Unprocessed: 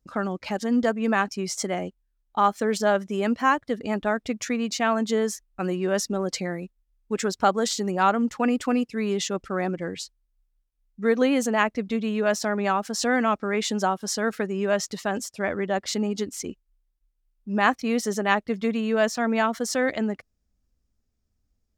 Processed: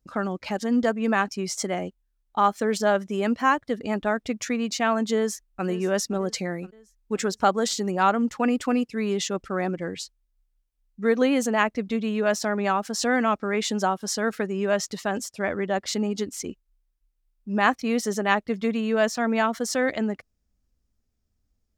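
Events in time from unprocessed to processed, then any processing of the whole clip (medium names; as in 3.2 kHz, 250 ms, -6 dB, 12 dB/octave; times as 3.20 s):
5.16–5.66 s: echo throw 520 ms, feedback 50%, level -16 dB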